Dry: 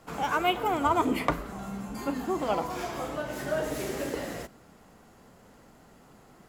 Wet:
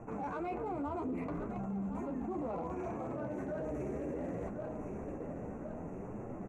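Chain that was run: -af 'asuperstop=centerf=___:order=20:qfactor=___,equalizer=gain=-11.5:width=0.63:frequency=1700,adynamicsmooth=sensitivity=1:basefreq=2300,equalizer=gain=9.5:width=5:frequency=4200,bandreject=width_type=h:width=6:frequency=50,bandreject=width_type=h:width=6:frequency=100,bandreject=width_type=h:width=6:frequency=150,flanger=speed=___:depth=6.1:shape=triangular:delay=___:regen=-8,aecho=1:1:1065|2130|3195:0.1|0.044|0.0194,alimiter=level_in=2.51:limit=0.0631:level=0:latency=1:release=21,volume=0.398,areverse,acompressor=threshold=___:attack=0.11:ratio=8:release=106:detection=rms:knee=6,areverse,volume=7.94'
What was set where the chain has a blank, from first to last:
4000, 1.3, 0.64, 8.4, 0.00251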